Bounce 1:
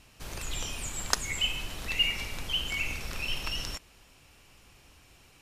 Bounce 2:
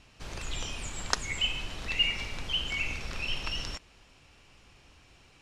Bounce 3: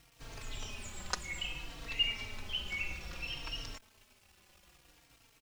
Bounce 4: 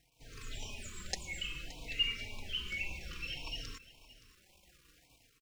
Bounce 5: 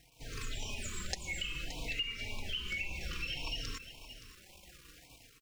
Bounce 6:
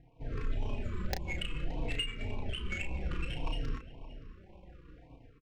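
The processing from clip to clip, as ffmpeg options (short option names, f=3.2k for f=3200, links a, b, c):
-af "lowpass=6.3k"
-filter_complex "[0:a]acrusher=bits=8:mix=0:aa=0.000001,asplit=2[a][b];[b]adelay=3.8,afreqshift=-0.6[c];[a][c]amix=inputs=2:normalize=1,volume=-4dB"
-af "dynaudnorm=f=120:g=5:m=7dB,aecho=1:1:571:0.126,afftfilt=real='re*(1-between(b*sr/1024,680*pow(1600/680,0.5+0.5*sin(2*PI*1.8*pts/sr))/1.41,680*pow(1600/680,0.5+0.5*sin(2*PI*1.8*pts/sr))*1.41))':imag='im*(1-between(b*sr/1024,680*pow(1600/680,0.5+0.5*sin(2*PI*1.8*pts/sr))/1.41,680*pow(1600/680,0.5+0.5*sin(2*PI*1.8*pts/sr))*1.41))':win_size=1024:overlap=0.75,volume=-8dB"
-af "acompressor=threshold=-43dB:ratio=5,volume=8dB"
-filter_complex "[0:a]adynamicsmooth=sensitivity=3:basefreq=850,aeval=exprs='0.106*sin(PI/2*2*val(0)/0.106)':c=same,asplit=2[a][b];[b]adelay=33,volume=-6.5dB[c];[a][c]amix=inputs=2:normalize=0,volume=-2.5dB"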